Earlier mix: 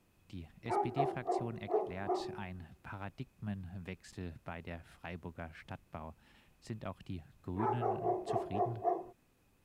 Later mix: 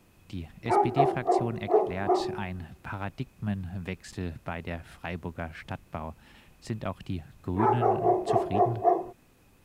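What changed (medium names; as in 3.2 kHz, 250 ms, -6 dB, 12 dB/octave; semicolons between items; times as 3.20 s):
speech +9.5 dB; background +10.5 dB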